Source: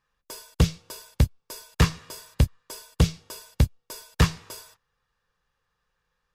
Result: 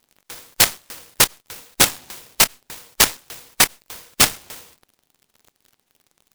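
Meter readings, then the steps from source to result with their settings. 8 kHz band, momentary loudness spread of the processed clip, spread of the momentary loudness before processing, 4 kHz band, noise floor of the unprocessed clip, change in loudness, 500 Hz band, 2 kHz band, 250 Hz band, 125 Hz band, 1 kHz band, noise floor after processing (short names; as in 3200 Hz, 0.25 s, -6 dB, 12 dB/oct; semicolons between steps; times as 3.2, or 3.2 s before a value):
+19.0 dB, 20 LU, 17 LU, +14.5 dB, -79 dBFS, +8.5 dB, +4.5 dB, +13.0 dB, -3.5 dB, -13.0 dB, +10.5 dB, -73 dBFS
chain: band inversion scrambler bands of 2000 Hz; crackle 62/s -41 dBFS; noise-modulated delay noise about 3100 Hz, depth 0.22 ms; gain +4 dB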